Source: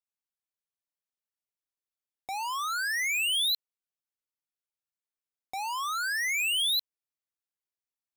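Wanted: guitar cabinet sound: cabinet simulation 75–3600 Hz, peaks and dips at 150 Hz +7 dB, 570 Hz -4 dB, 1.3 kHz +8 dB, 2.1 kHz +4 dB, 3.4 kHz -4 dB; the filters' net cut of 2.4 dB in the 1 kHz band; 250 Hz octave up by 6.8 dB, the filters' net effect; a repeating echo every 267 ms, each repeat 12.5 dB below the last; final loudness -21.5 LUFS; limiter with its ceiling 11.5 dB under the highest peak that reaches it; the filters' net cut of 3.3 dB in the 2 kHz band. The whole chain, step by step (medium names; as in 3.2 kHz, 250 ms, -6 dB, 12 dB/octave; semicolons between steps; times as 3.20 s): peaking EQ 250 Hz +8.5 dB; peaking EQ 1 kHz -7 dB; peaking EQ 2 kHz -5.5 dB; peak limiter -35 dBFS; cabinet simulation 75–3600 Hz, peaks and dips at 150 Hz +7 dB, 570 Hz -4 dB, 1.3 kHz +8 dB, 2.1 kHz +4 dB, 3.4 kHz -4 dB; feedback delay 267 ms, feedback 24%, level -12.5 dB; trim +17 dB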